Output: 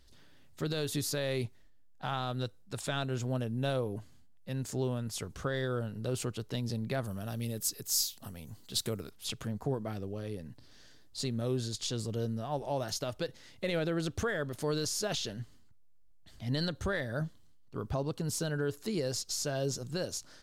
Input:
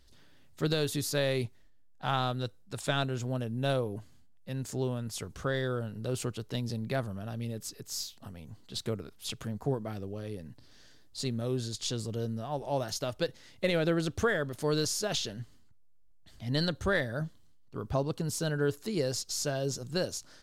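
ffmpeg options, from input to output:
ffmpeg -i in.wav -filter_complex "[0:a]alimiter=limit=-23.5dB:level=0:latency=1:release=117,asettb=1/sr,asplit=3[link_01][link_02][link_03];[link_01]atrim=end=7.044[link_04];[link_02]atrim=start=7.04:end=9.11,asetpts=PTS-STARTPTS,afade=type=in:duration=0.004:curve=qsin,afade=type=out:start_time=2.066:duration=0.004:curve=qsin,aemphasis=mode=production:type=50kf[link_05];[link_03]atrim=start=9.106[link_06];[link_04][link_05]acrossfade=duration=0.004:curve1=hsin:curve2=qsin[link_07];[link_07][link_06]acrossfade=duration=0.004:curve1=qsin:curve2=hsin" out.wav

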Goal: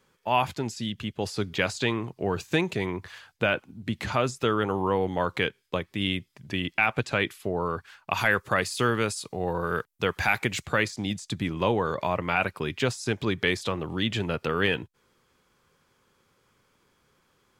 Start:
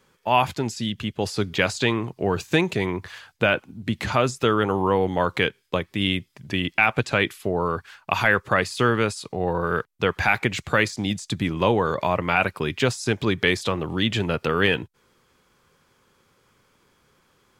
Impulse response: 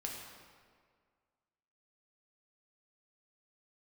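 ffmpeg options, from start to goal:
-filter_complex "[0:a]asettb=1/sr,asplit=3[link_01][link_02][link_03];[link_01]atrim=end=8.174[link_04];[link_02]atrim=start=8.17:end=10.66,asetpts=PTS-STARTPTS,afade=type=in:duration=0.004:curve=qsin,afade=type=out:start_time=2.486:duration=0.004:curve=qsin,highshelf=frequency=6100:gain=9.5[link_05];[link_03]atrim=start=10.656[link_06];[link_04][link_05]acrossfade=duration=0.004:curve1=hsin:curve2=qsin[link_07];[link_07][link_06]acrossfade=duration=0.004:curve1=qsin:curve2=hsin,volume=-4.5dB"

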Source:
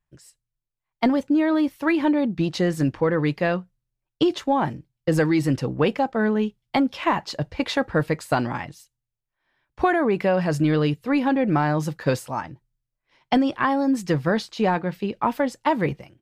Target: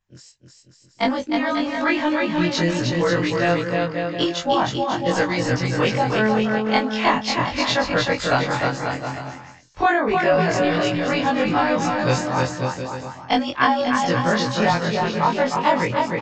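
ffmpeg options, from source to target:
ffmpeg -i in.wav -filter_complex "[0:a]afftfilt=real='re':imag='-im':win_size=2048:overlap=0.75,highshelf=frequency=2800:gain=6.5,aresample=16000,aresample=44100,aecho=1:1:310|542.5|716.9|847.7|945.7:0.631|0.398|0.251|0.158|0.1,acrossover=split=180|450|4000[link_01][link_02][link_03][link_04];[link_02]acompressor=threshold=-37dB:ratio=6[link_05];[link_01][link_05][link_03][link_04]amix=inputs=4:normalize=0,volume=7dB" out.wav

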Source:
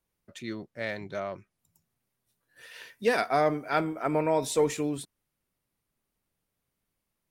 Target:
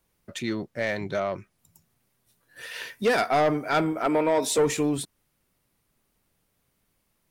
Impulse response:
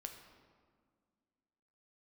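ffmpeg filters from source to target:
-filter_complex "[0:a]asettb=1/sr,asplit=3[link_01][link_02][link_03];[link_01]atrim=end=4.054[link_04];[link_02]atrim=start=4.05:end=4.58,asetpts=PTS-STARTPTS,afade=type=in:duration=0.004:curve=qsin,afade=type=out:start_time=0.526:duration=0.004:curve=qsin,highpass=frequency=200:width=0.5412,highpass=frequency=200:width=1.3066[link_05];[link_03]atrim=start=4.576[link_06];[link_04][link_05]acrossfade=duration=0.004:curve1=hsin:curve2=qsin[link_07];[link_07][link_06]acrossfade=duration=0.004:curve1=qsin:curve2=hsin,asplit=2[link_08][link_09];[link_09]acompressor=threshold=-37dB:ratio=6,volume=-1.5dB[link_10];[link_08][link_10]amix=inputs=2:normalize=0,asoftclip=type=tanh:threshold=-20dB,volume=4.5dB"

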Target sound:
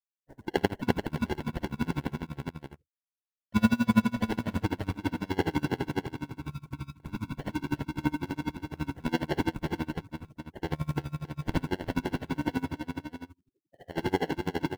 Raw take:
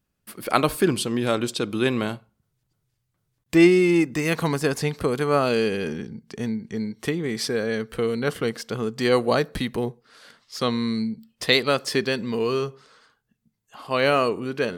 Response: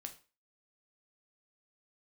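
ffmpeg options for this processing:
-filter_complex "[0:a]asetrate=28595,aresample=44100,atempo=1.54221,acrusher=samples=36:mix=1:aa=0.000001,acrossover=split=4700[link_01][link_02];[link_02]acompressor=threshold=-47dB:ratio=4:attack=1:release=60[link_03];[link_01][link_03]amix=inputs=2:normalize=0,afftfilt=real='re*gte(hypot(re,im),0.00891)':imag='im*gte(hypot(re,im),0.00891)':win_size=1024:overlap=0.75,asplit=2[link_04][link_05];[link_05]aecho=0:1:54|347|618:0.631|0.668|0.447[link_06];[link_04][link_06]amix=inputs=2:normalize=0,acrusher=bits=5:mode=log:mix=0:aa=0.000001,aeval=exprs='val(0)*pow(10,-27*(0.5-0.5*cos(2*PI*12*n/s))/20)':channel_layout=same,volume=-5dB"

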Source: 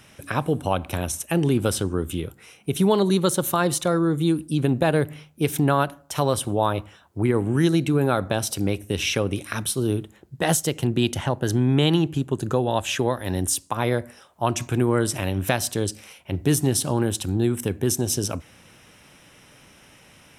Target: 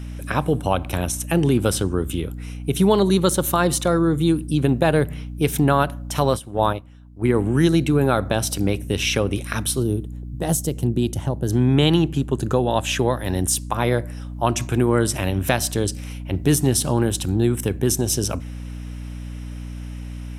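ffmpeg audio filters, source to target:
ffmpeg -i in.wav -filter_complex "[0:a]aeval=exprs='val(0)+0.0224*(sin(2*PI*60*n/s)+sin(2*PI*2*60*n/s)/2+sin(2*PI*3*60*n/s)/3+sin(2*PI*4*60*n/s)/4+sin(2*PI*5*60*n/s)/5)':channel_layout=same,asplit=3[link_01][link_02][link_03];[link_01]afade=type=out:start_time=6.25:duration=0.02[link_04];[link_02]agate=range=-13dB:threshold=-21dB:ratio=16:detection=peak,afade=type=in:start_time=6.25:duration=0.02,afade=type=out:start_time=7.33:duration=0.02[link_05];[link_03]afade=type=in:start_time=7.33:duration=0.02[link_06];[link_04][link_05][link_06]amix=inputs=3:normalize=0,asplit=3[link_07][link_08][link_09];[link_07]afade=type=out:start_time=9.82:duration=0.02[link_10];[link_08]equalizer=frequency=2000:width_type=o:width=2.8:gain=-13.5,afade=type=in:start_time=9.82:duration=0.02,afade=type=out:start_time=11.51:duration=0.02[link_11];[link_09]afade=type=in:start_time=11.51:duration=0.02[link_12];[link_10][link_11][link_12]amix=inputs=3:normalize=0,volume=2.5dB" out.wav

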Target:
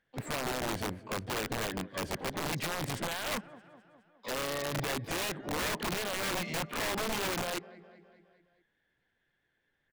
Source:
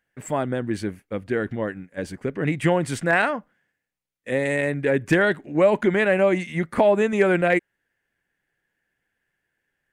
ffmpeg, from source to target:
ffmpeg -i in.wav -filter_complex "[0:a]lowpass=frequency=2000:poles=1,acompressor=threshold=-24dB:ratio=6,alimiter=level_in=2dB:limit=-24dB:level=0:latency=1:release=35,volume=-2dB,asplit=3[link_01][link_02][link_03];[link_02]asetrate=52444,aresample=44100,atempo=0.840896,volume=-12dB[link_04];[link_03]asetrate=88200,aresample=44100,atempo=0.5,volume=-10dB[link_05];[link_01][link_04][link_05]amix=inputs=3:normalize=0,asplit=2[link_06][link_07];[link_07]aecho=0:1:207|414|621|828|1035:0.106|0.0625|0.0369|0.0218|0.0128[link_08];[link_06][link_08]amix=inputs=2:normalize=0,aeval=exprs='(mod(25.1*val(0)+1,2)-1)/25.1':channel_layout=same" out.wav

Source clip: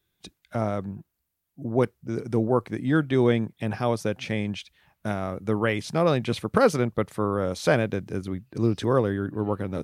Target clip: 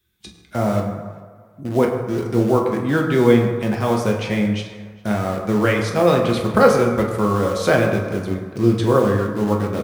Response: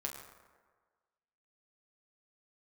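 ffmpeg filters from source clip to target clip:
-filter_complex "[0:a]acrossover=split=460|890[link_01][link_02][link_03];[link_02]acrusher=bits=6:mix=0:aa=0.000001[link_04];[link_01][link_04][link_03]amix=inputs=3:normalize=0,asplit=2[link_05][link_06];[link_06]adelay=404,lowpass=frequency=3700:poles=1,volume=-22.5dB,asplit=2[link_07][link_08];[link_08]adelay=404,lowpass=frequency=3700:poles=1,volume=0.29[link_09];[link_05][link_07][link_09]amix=inputs=3:normalize=0[link_10];[1:a]atrim=start_sample=2205[link_11];[link_10][link_11]afir=irnorm=-1:irlink=0,volume=6.5dB"

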